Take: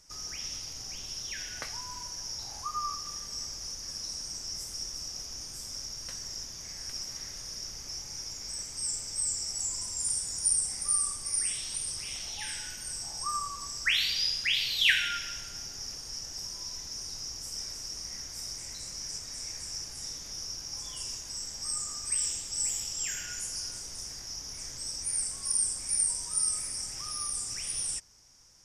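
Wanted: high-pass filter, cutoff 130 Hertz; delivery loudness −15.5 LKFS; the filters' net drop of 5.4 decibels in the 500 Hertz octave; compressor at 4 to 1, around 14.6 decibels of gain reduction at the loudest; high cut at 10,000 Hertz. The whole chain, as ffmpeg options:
ffmpeg -i in.wav -af "highpass=130,lowpass=10000,equalizer=frequency=500:width_type=o:gain=-7,acompressor=threshold=-37dB:ratio=4,volume=22.5dB" out.wav

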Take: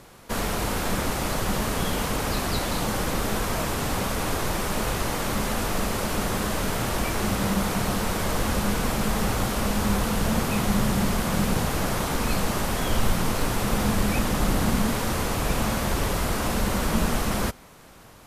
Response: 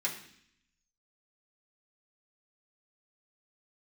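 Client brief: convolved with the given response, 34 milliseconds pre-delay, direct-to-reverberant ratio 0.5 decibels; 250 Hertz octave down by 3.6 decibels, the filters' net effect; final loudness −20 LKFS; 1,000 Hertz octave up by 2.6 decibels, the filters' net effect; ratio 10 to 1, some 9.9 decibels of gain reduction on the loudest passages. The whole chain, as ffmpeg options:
-filter_complex "[0:a]equalizer=frequency=250:width_type=o:gain=-5,equalizer=frequency=1000:width_type=o:gain=3.5,acompressor=threshold=-26dB:ratio=10,asplit=2[link_01][link_02];[1:a]atrim=start_sample=2205,adelay=34[link_03];[link_02][link_03]afir=irnorm=-1:irlink=0,volume=-5.5dB[link_04];[link_01][link_04]amix=inputs=2:normalize=0,volume=9dB"

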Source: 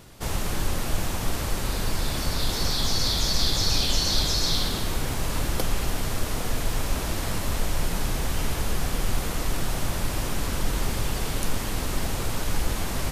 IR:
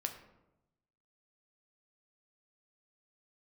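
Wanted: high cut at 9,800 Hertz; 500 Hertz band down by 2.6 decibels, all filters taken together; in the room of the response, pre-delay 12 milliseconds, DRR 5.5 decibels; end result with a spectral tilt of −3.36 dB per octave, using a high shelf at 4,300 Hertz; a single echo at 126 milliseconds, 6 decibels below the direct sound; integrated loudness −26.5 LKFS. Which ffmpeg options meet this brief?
-filter_complex "[0:a]lowpass=9800,equalizer=frequency=500:width_type=o:gain=-3.5,highshelf=frequency=4300:gain=6.5,aecho=1:1:126:0.501,asplit=2[link_01][link_02];[1:a]atrim=start_sample=2205,adelay=12[link_03];[link_02][link_03]afir=irnorm=-1:irlink=0,volume=-5.5dB[link_04];[link_01][link_04]amix=inputs=2:normalize=0,volume=-3dB"

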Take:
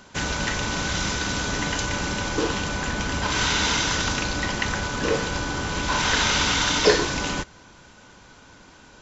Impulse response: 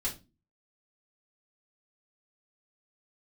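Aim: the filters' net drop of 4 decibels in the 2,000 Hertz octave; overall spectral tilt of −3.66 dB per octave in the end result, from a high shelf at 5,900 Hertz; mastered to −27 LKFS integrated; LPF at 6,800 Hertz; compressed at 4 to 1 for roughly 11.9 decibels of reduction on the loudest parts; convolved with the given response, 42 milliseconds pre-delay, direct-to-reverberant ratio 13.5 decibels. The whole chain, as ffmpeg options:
-filter_complex "[0:a]lowpass=6800,equalizer=frequency=2000:width_type=o:gain=-5.5,highshelf=frequency=5900:gain=-3,acompressor=threshold=-27dB:ratio=4,asplit=2[link_01][link_02];[1:a]atrim=start_sample=2205,adelay=42[link_03];[link_02][link_03]afir=irnorm=-1:irlink=0,volume=-16.5dB[link_04];[link_01][link_04]amix=inputs=2:normalize=0,volume=3dB"

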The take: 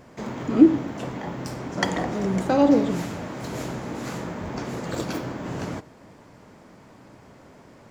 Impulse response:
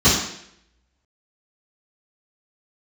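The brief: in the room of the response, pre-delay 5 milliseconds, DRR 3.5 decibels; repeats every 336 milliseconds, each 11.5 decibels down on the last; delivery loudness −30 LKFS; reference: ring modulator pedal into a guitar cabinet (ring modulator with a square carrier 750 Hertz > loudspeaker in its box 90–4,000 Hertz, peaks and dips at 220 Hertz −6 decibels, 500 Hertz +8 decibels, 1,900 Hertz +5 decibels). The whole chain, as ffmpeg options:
-filter_complex "[0:a]aecho=1:1:336|672|1008:0.266|0.0718|0.0194,asplit=2[link_01][link_02];[1:a]atrim=start_sample=2205,adelay=5[link_03];[link_02][link_03]afir=irnorm=-1:irlink=0,volume=-25.5dB[link_04];[link_01][link_04]amix=inputs=2:normalize=0,aeval=exprs='val(0)*sgn(sin(2*PI*750*n/s))':channel_layout=same,highpass=90,equalizer=frequency=220:width_type=q:width=4:gain=-6,equalizer=frequency=500:width_type=q:width=4:gain=8,equalizer=frequency=1900:width_type=q:width=4:gain=5,lowpass=frequency=4000:width=0.5412,lowpass=frequency=4000:width=1.3066,volume=-12.5dB"

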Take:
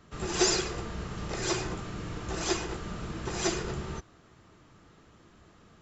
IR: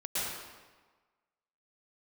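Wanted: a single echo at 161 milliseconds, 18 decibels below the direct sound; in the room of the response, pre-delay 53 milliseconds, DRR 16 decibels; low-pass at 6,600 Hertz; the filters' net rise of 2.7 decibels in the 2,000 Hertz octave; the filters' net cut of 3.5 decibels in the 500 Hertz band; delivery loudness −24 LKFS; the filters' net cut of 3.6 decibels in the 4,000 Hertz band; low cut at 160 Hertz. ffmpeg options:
-filter_complex "[0:a]highpass=160,lowpass=6600,equalizer=frequency=500:width_type=o:gain=-5.5,equalizer=frequency=2000:width_type=o:gain=5,equalizer=frequency=4000:width_type=o:gain=-5,aecho=1:1:161:0.126,asplit=2[link_01][link_02];[1:a]atrim=start_sample=2205,adelay=53[link_03];[link_02][link_03]afir=irnorm=-1:irlink=0,volume=-22.5dB[link_04];[link_01][link_04]amix=inputs=2:normalize=0,volume=10dB"

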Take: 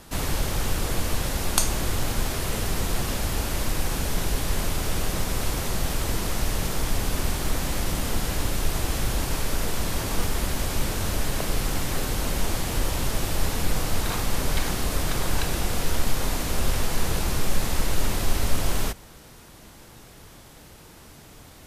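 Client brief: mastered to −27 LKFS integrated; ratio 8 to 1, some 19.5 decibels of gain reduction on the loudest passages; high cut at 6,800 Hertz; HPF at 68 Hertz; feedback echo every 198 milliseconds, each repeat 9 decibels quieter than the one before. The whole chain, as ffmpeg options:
ffmpeg -i in.wav -af "highpass=68,lowpass=6800,acompressor=threshold=-43dB:ratio=8,aecho=1:1:198|396|594|792:0.355|0.124|0.0435|0.0152,volume=18dB" out.wav

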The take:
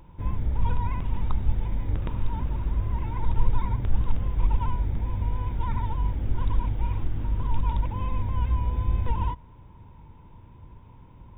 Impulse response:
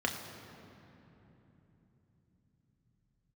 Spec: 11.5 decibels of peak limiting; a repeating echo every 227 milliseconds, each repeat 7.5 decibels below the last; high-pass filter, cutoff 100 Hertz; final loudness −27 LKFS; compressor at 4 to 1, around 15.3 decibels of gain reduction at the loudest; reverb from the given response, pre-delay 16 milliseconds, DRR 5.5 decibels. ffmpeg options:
-filter_complex "[0:a]highpass=100,acompressor=threshold=-47dB:ratio=4,alimiter=level_in=18dB:limit=-24dB:level=0:latency=1,volume=-18dB,aecho=1:1:227|454|681|908|1135:0.422|0.177|0.0744|0.0312|0.0131,asplit=2[link_01][link_02];[1:a]atrim=start_sample=2205,adelay=16[link_03];[link_02][link_03]afir=irnorm=-1:irlink=0,volume=-12.5dB[link_04];[link_01][link_04]amix=inputs=2:normalize=0,volume=21dB"

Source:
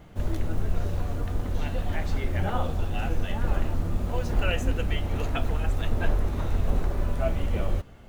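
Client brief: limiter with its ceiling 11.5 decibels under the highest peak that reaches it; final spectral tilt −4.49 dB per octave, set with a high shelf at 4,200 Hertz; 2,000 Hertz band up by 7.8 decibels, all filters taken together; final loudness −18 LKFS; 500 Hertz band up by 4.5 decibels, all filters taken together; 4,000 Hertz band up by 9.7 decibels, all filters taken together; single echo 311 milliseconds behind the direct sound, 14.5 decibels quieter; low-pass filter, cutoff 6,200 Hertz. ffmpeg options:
ffmpeg -i in.wav -af "lowpass=6200,equalizer=frequency=500:width_type=o:gain=5,equalizer=frequency=2000:width_type=o:gain=6.5,equalizer=frequency=4000:width_type=o:gain=8,highshelf=frequency=4200:gain=6,alimiter=limit=-19.5dB:level=0:latency=1,aecho=1:1:311:0.188,volume=12.5dB" out.wav

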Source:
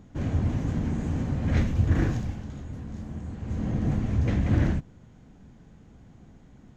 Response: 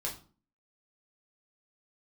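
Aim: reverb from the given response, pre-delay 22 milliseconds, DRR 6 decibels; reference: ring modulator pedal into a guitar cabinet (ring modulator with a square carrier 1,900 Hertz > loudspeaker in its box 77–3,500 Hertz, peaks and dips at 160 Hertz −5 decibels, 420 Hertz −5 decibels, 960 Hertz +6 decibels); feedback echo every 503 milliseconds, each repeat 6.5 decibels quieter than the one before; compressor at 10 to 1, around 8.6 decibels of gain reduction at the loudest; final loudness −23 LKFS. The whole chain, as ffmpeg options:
-filter_complex "[0:a]acompressor=threshold=-26dB:ratio=10,aecho=1:1:503|1006|1509|2012|2515|3018:0.473|0.222|0.105|0.0491|0.0231|0.0109,asplit=2[link_01][link_02];[1:a]atrim=start_sample=2205,adelay=22[link_03];[link_02][link_03]afir=irnorm=-1:irlink=0,volume=-8.5dB[link_04];[link_01][link_04]amix=inputs=2:normalize=0,aeval=exprs='val(0)*sgn(sin(2*PI*1900*n/s))':channel_layout=same,highpass=77,equalizer=frequency=160:width_type=q:width=4:gain=-5,equalizer=frequency=420:width_type=q:width=4:gain=-5,equalizer=frequency=960:width_type=q:width=4:gain=6,lowpass=frequency=3500:width=0.5412,lowpass=frequency=3500:width=1.3066,volume=4.5dB"

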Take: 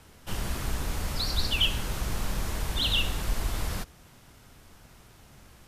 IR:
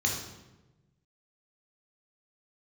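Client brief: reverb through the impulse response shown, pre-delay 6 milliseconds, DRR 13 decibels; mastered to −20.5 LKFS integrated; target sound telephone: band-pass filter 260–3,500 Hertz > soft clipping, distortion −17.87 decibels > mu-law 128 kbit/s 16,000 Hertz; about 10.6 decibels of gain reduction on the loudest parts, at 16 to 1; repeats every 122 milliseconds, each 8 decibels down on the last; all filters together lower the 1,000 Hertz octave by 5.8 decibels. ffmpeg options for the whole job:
-filter_complex "[0:a]equalizer=frequency=1000:width_type=o:gain=-7.5,acompressor=threshold=-32dB:ratio=16,aecho=1:1:122|244|366|488|610:0.398|0.159|0.0637|0.0255|0.0102,asplit=2[link_01][link_02];[1:a]atrim=start_sample=2205,adelay=6[link_03];[link_02][link_03]afir=irnorm=-1:irlink=0,volume=-21dB[link_04];[link_01][link_04]amix=inputs=2:normalize=0,highpass=260,lowpass=3500,asoftclip=threshold=-34.5dB,volume=23.5dB" -ar 16000 -c:a pcm_mulaw

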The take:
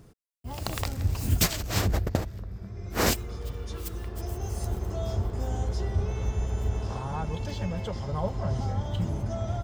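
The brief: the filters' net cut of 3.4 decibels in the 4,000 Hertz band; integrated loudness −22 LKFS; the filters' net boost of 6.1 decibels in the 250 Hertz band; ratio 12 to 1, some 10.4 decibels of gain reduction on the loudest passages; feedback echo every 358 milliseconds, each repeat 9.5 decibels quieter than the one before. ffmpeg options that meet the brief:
ffmpeg -i in.wav -af "equalizer=frequency=250:width_type=o:gain=8.5,equalizer=frequency=4000:width_type=o:gain=-4.5,acompressor=threshold=-27dB:ratio=12,aecho=1:1:358|716|1074|1432:0.335|0.111|0.0365|0.012,volume=11dB" out.wav

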